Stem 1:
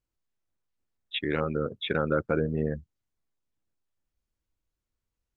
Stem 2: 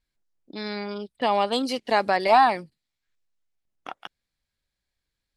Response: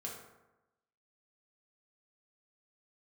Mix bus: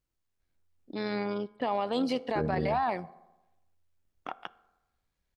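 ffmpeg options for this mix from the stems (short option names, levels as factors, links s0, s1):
-filter_complex "[0:a]volume=1.33,asplit=3[s0][s1][s2];[s0]atrim=end=0.96,asetpts=PTS-STARTPTS,afade=t=out:st=0.956:d=0.004:c=hsin[s3];[s1]atrim=start=0.96:end=2.35,asetpts=PTS-STARTPTS,volume=0[s4];[s2]atrim=start=2.35,asetpts=PTS-STARTPTS,afade=t=in:d=0.004:c=hsin[s5];[s3][s4][s5]concat=n=3:v=0:a=1[s6];[1:a]lowpass=f=1800:p=1,alimiter=limit=0.158:level=0:latency=1:release=342,adelay=400,volume=1.19,asplit=2[s7][s8];[s8]volume=0.188[s9];[2:a]atrim=start_sample=2205[s10];[s9][s10]afir=irnorm=-1:irlink=0[s11];[s6][s7][s11]amix=inputs=3:normalize=0,tremolo=f=88:d=0.333,alimiter=limit=0.1:level=0:latency=1:release=30"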